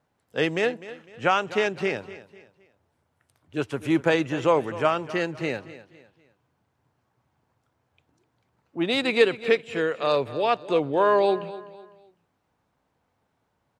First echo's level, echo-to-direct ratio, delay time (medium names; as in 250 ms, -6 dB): -16.0 dB, -15.5 dB, 252 ms